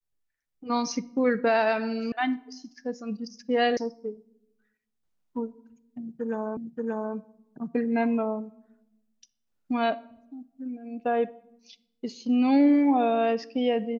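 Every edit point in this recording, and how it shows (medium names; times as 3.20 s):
2.12 s: sound stops dead
3.77 s: sound stops dead
6.57 s: repeat of the last 0.58 s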